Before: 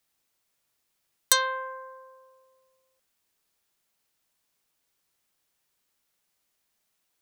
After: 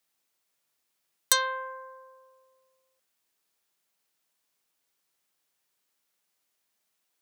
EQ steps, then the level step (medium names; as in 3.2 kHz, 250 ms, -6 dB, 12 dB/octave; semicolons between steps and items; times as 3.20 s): high-pass 190 Hz 6 dB/octave; -1.5 dB